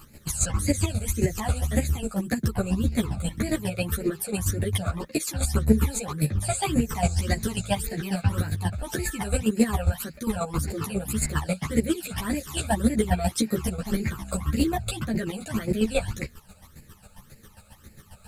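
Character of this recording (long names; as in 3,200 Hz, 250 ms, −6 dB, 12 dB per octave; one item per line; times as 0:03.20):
phaser sweep stages 12, 1.8 Hz, lowest notch 310–1,100 Hz
a quantiser's noise floor 12 bits, dither none
chopped level 7.4 Hz, depth 65%, duty 25%
a shimmering, thickened sound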